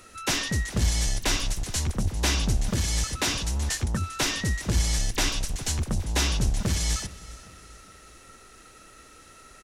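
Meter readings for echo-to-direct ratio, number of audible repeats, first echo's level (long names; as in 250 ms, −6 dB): −18.5 dB, 3, −19.5 dB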